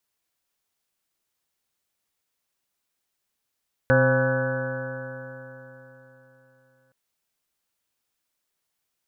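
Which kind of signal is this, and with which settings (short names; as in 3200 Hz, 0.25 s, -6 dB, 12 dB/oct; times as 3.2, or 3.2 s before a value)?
stretched partials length 3.02 s, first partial 128 Hz, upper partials -4.5/-17/3/-16.5/-12/-14/-13.5/-14.5/-2/-8 dB, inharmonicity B 0.0037, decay 3.74 s, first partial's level -20 dB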